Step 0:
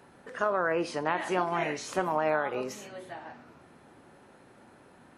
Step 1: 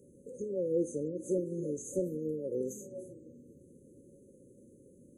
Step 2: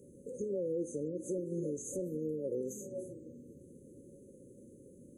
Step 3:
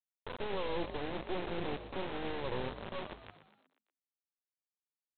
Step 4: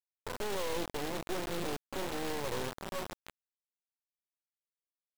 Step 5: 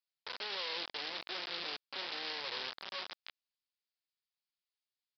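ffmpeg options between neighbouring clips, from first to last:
-af "afftfilt=real='re*(1-between(b*sr/4096,580,6100))':imag='im*(1-between(b*sr/4096,580,6100))':win_size=4096:overlap=0.75"
-af "alimiter=level_in=2.11:limit=0.0631:level=0:latency=1:release=267,volume=0.473,volume=1.33"
-filter_complex "[0:a]aresample=8000,acrusher=bits=4:dc=4:mix=0:aa=0.000001,aresample=44100,asplit=6[s0][s1][s2][s3][s4][s5];[s1]adelay=120,afreqshift=52,volume=0.251[s6];[s2]adelay=240,afreqshift=104,volume=0.13[s7];[s3]adelay=360,afreqshift=156,volume=0.0676[s8];[s4]adelay=480,afreqshift=208,volume=0.0355[s9];[s5]adelay=600,afreqshift=260,volume=0.0184[s10];[s0][s6][s7][s8][s9][s10]amix=inputs=6:normalize=0,volume=1.33"
-af "acrusher=bits=5:mix=0:aa=0.000001"
-af "aderivative,aresample=11025,aresample=44100,volume=3.98"

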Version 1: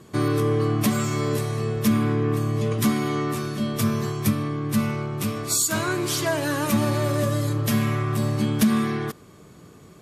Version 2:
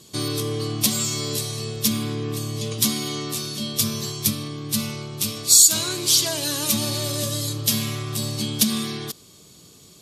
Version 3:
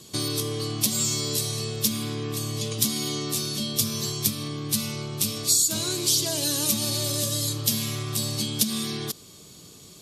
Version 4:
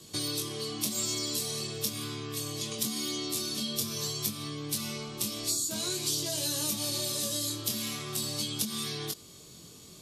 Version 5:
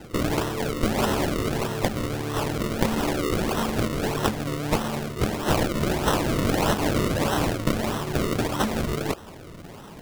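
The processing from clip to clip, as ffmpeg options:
-af "highshelf=f=2600:t=q:w=1.5:g=14,volume=0.562"
-filter_complex "[0:a]acrossover=split=660|3500[s0][s1][s2];[s0]acompressor=threshold=0.0316:ratio=4[s3];[s1]acompressor=threshold=0.00891:ratio=4[s4];[s2]acompressor=threshold=0.0794:ratio=4[s5];[s3][s4][s5]amix=inputs=3:normalize=0,volume=1.19"
-filter_complex "[0:a]flanger=delay=19.5:depth=4.6:speed=0.46,acrossover=split=240|1800[s0][s1][s2];[s0]acompressor=threshold=0.00708:ratio=4[s3];[s1]acompressor=threshold=0.0126:ratio=4[s4];[s2]acompressor=threshold=0.0355:ratio=4[s5];[s3][s4][s5]amix=inputs=3:normalize=0"
-af "acrusher=samples=37:mix=1:aa=0.000001:lfo=1:lforange=37:lforate=1.6,volume=2.82"

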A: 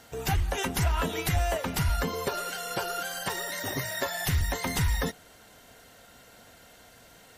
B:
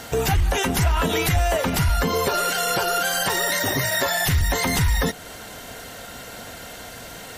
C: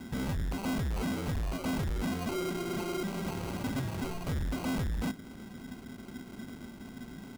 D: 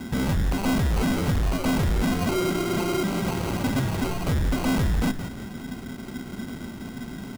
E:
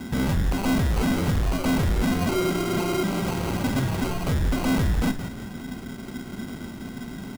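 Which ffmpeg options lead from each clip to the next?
-filter_complex "[0:a]asplit=2[s0][s1];[s1]acompressor=threshold=0.0158:ratio=6,volume=1.33[s2];[s0][s2]amix=inputs=2:normalize=0,alimiter=limit=0.0841:level=0:latency=1:release=38,volume=2.66"
-af "firequalizer=gain_entry='entry(110,0);entry(250,14);entry(370,-17);entry(1400,0);entry(2200,-11)':delay=0.05:min_phase=1,acrusher=samples=25:mix=1:aa=0.000001,asoftclip=type=hard:threshold=0.0708,volume=0.447"
-filter_complex "[0:a]asplit=4[s0][s1][s2][s3];[s1]adelay=172,afreqshift=-64,volume=0.316[s4];[s2]adelay=344,afreqshift=-128,volume=0.0977[s5];[s3]adelay=516,afreqshift=-192,volume=0.0305[s6];[s0][s4][s5][s6]amix=inputs=4:normalize=0,volume=2.82"
-filter_complex "[0:a]asplit=2[s0][s1];[s1]adelay=46,volume=0.224[s2];[s0][s2]amix=inputs=2:normalize=0"

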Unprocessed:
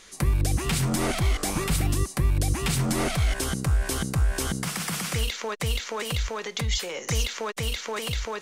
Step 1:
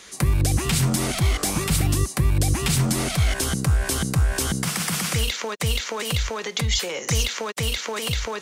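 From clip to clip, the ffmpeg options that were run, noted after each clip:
-filter_complex "[0:a]highpass=57,acrossover=split=190|3000[s0][s1][s2];[s1]acompressor=threshold=0.0251:ratio=6[s3];[s0][s3][s2]amix=inputs=3:normalize=0,volume=1.88"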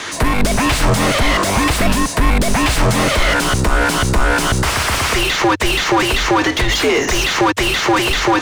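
-filter_complex "[0:a]asplit=2[s0][s1];[s1]highpass=f=720:p=1,volume=25.1,asoftclip=type=tanh:threshold=0.398[s2];[s0][s2]amix=inputs=2:normalize=0,lowpass=f=1500:p=1,volume=0.501,afreqshift=-100,volume=1.78"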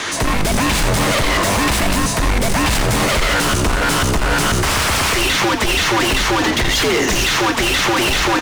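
-filter_complex "[0:a]asoftclip=type=hard:threshold=0.133,asplit=2[s0][s1];[s1]asplit=8[s2][s3][s4][s5][s6][s7][s8][s9];[s2]adelay=86,afreqshift=-81,volume=0.355[s10];[s3]adelay=172,afreqshift=-162,volume=0.216[s11];[s4]adelay=258,afreqshift=-243,volume=0.132[s12];[s5]adelay=344,afreqshift=-324,volume=0.0804[s13];[s6]adelay=430,afreqshift=-405,volume=0.049[s14];[s7]adelay=516,afreqshift=-486,volume=0.0299[s15];[s8]adelay=602,afreqshift=-567,volume=0.0182[s16];[s9]adelay=688,afreqshift=-648,volume=0.0111[s17];[s10][s11][s12][s13][s14][s15][s16][s17]amix=inputs=8:normalize=0[s18];[s0][s18]amix=inputs=2:normalize=0,volume=1.41"

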